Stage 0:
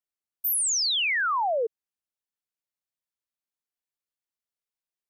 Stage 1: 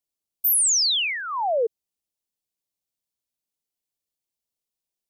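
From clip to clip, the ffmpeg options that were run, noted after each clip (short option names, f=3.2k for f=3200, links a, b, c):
-af "equalizer=f=1.5k:t=o:w=1.3:g=-13,volume=6dB"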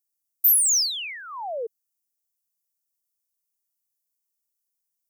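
-af "aexciter=amount=1.9:drive=9.5:freq=5.1k,volume=-8dB"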